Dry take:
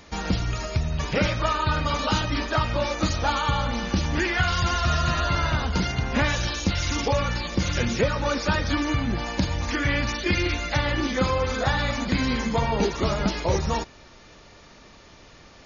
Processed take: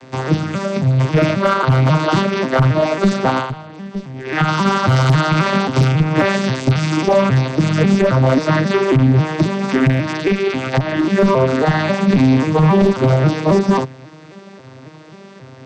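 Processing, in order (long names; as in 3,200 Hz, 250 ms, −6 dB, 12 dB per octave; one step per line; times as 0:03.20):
vocoder with an arpeggio as carrier minor triad, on C3, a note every 270 ms
0:04.96–0:05.85: high-shelf EQ 3,400 Hz +7 dB
asymmetric clip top −22 dBFS
0:03.37–0:04.39: duck −16.5 dB, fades 0.15 s
0:09.90–0:11.13: downward compressor 6 to 1, threshold −27 dBFS, peak gain reduction 8.5 dB
boost into a limiter +18 dB
level −3.5 dB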